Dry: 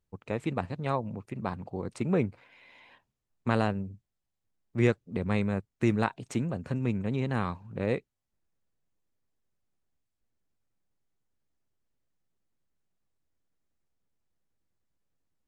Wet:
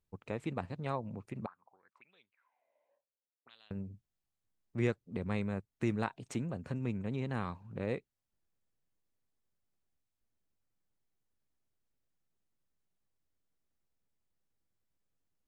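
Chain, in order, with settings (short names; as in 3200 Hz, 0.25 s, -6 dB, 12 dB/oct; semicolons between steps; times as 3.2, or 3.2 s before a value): in parallel at -2.5 dB: compressor, threshold -36 dBFS, peak gain reduction 17 dB; 1.46–3.71 on the sum: auto-wah 520–3500 Hz, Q 11, up, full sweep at -23 dBFS; gain -8.5 dB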